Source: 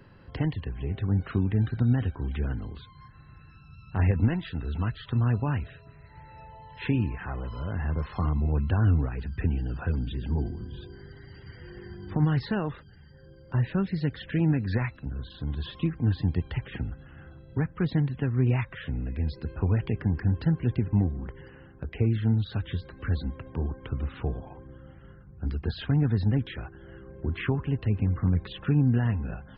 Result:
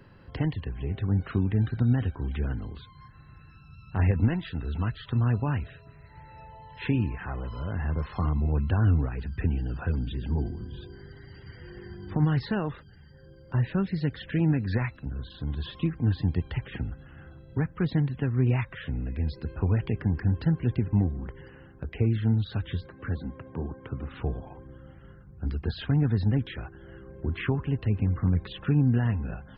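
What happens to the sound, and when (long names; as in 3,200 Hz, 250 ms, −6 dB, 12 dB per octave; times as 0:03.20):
0:22.86–0:24.11: band-pass filter 100–2,200 Hz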